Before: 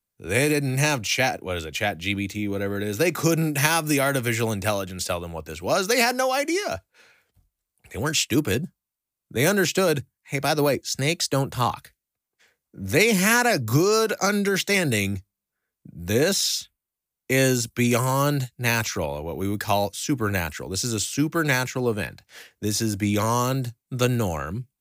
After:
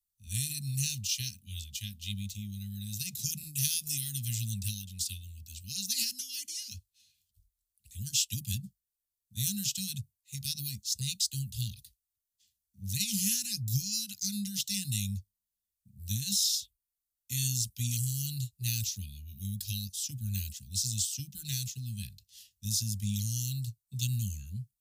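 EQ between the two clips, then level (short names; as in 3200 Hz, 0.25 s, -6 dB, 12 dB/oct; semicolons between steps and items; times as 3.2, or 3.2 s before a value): Chebyshev band-stop 200–2300 Hz, order 5; dynamic EQ 140 Hz, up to +5 dB, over -37 dBFS, Q 1.5; fixed phaser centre 610 Hz, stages 6; -1.5 dB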